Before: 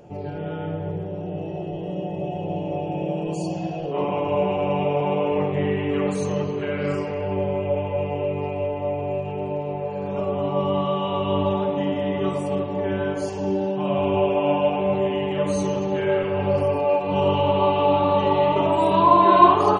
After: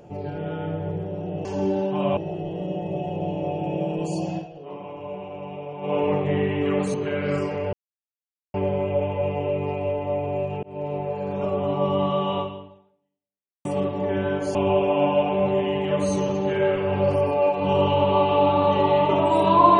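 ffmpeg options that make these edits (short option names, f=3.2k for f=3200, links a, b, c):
-filter_complex "[0:a]asplit=10[a][b][c][d][e][f][g][h][i][j];[a]atrim=end=1.452[k];[b]atrim=start=13.298:end=14.022[l];[c]atrim=start=1.448:end=3.76,asetpts=PTS-STARTPTS,afade=t=out:st=2.172:d=0.14:silence=0.237137[m];[d]atrim=start=3.76:end=5.09,asetpts=PTS-STARTPTS,volume=-12.5dB[n];[e]atrim=start=5.09:end=6.222,asetpts=PTS-STARTPTS,afade=t=in:d=0.14:silence=0.237137[o];[f]atrim=start=6.498:end=7.29,asetpts=PTS-STARTPTS,afade=t=out:st=0.788:d=0.004:c=hsin,apad=pad_dur=0.81[p];[g]atrim=start=7.29:end=9.38,asetpts=PTS-STARTPTS,afade=t=in:d=0.004:c=hsin,afade=t=out:st=2.086:d=0.004:c=hsin[q];[h]atrim=start=9.38:end=12.4,asetpts=PTS-STARTPTS,afade=t=in:d=0.26,afade=t=out:st=1.75:d=1.27:c=exp[r];[i]atrim=start=12.4:end=13.302,asetpts=PTS-STARTPTS,afade=t=in:d=0.004:c=hsin[s];[j]atrim=start=14.018[t];[k][l]acrossfade=d=0.004:c1=hsin:c2=hsin[u];[m][n][o]concat=n=3:v=0:a=1[v];[u][v]acrossfade=d=0.004:c1=hsin:c2=hsin[w];[p][q][r][s]concat=n=4:v=0:a=1[x];[w][x]acrossfade=d=0.004:c1=hsin:c2=hsin[y];[y][t]acrossfade=d=0.004:c1=hsin:c2=hsin"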